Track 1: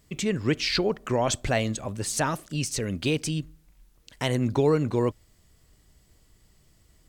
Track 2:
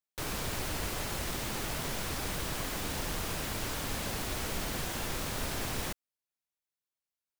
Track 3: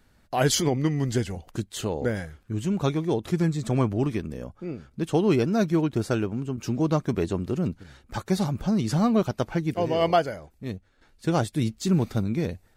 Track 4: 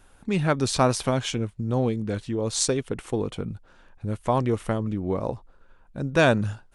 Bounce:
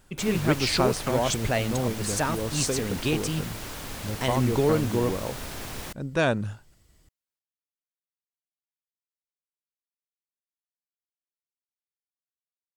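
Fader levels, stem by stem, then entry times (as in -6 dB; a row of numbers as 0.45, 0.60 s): -1.0 dB, -1.5 dB, off, -4.5 dB; 0.00 s, 0.00 s, off, 0.00 s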